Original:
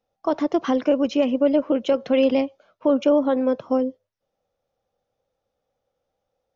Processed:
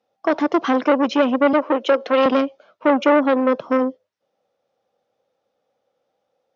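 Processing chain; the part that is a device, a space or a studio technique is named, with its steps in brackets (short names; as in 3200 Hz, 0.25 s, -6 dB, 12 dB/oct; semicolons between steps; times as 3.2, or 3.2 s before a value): public-address speaker with an overloaded transformer (core saturation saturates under 810 Hz; BPF 200–5600 Hz); 1.53–2.26 HPF 290 Hz 24 dB/oct; gain +6 dB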